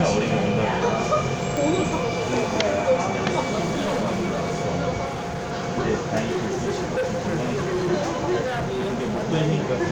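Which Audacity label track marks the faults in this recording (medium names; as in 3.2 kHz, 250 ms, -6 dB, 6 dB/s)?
1.570000	1.570000	pop -13 dBFS
3.660000	4.550000	clipped -20.5 dBFS
5.050000	5.520000	clipped -25.5 dBFS
6.260000	7.900000	clipped -20.5 dBFS
8.460000	9.260000	clipped -22.5 dBFS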